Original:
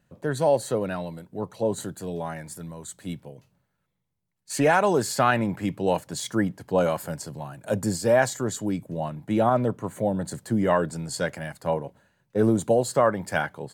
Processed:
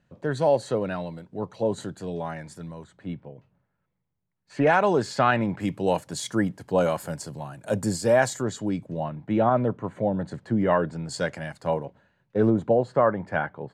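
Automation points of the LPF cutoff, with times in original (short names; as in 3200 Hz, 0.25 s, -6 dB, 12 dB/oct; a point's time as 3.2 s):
5500 Hz
from 2.84 s 2100 Hz
from 4.67 s 4500 Hz
from 5.6 s 11000 Hz
from 8.42 s 5400 Hz
from 9.03 s 2900 Hz
from 11.09 s 6900 Hz
from 11.85 s 3700 Hz
from 12.5 s 1900 Hz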